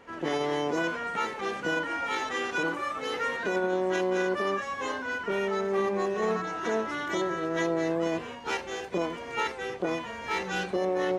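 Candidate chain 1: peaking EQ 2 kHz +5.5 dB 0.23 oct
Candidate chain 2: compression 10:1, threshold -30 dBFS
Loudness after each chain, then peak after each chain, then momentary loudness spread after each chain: -29.5 LUFS, -34.5 LUFS; -15.5 dBFS, -20.0 dBFS; 5 LU, 3 LU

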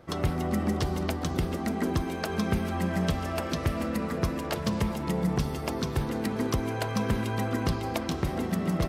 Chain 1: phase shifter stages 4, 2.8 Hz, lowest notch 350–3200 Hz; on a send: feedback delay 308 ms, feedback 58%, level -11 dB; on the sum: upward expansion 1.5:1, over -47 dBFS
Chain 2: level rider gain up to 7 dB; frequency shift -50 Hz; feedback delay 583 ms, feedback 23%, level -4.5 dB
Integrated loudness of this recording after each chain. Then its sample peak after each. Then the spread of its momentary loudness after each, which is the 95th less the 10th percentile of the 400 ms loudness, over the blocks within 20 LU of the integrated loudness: -33.0 LUFS, -22.5 LUFS; -13.0 dBFS, -4.5 dBFS; 4 LU, 2 LU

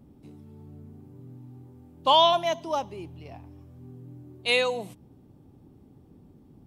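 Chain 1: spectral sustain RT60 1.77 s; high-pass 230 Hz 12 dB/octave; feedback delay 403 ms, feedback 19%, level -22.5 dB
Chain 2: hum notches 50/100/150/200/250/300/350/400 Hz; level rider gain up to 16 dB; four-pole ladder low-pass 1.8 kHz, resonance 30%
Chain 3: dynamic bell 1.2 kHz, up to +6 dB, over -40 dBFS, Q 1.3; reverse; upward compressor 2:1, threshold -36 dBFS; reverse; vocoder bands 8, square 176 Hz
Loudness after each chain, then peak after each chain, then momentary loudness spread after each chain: -21.0 LUFS, -22.5 LUFS, -26.0 LUFS; -2.5 dBFS, -6.5 dBFS, -9.5 dBFS; 19 LU, 23 LU, 21 LU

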